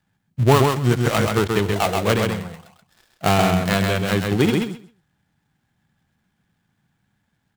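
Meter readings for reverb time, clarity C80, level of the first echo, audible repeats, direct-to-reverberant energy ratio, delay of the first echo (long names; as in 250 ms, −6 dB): no reverb audible, no reverb audible, −4.0 dB, 2, no reverb audible, 131 ms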